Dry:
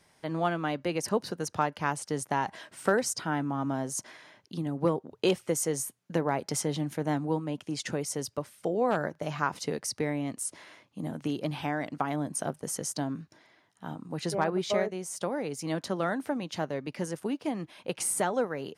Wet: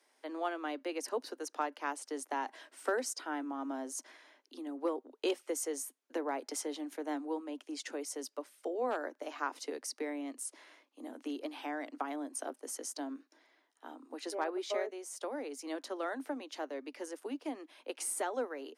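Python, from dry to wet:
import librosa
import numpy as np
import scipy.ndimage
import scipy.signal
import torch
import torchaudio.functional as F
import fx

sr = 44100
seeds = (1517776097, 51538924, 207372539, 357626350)

y = scipy.signal.sosfilt(scipy.signal.butter(16, 250.0, 'highpass', fs=sr, output='sos'), x)
y = y * 10.0 ** (-7.0 / 20.0)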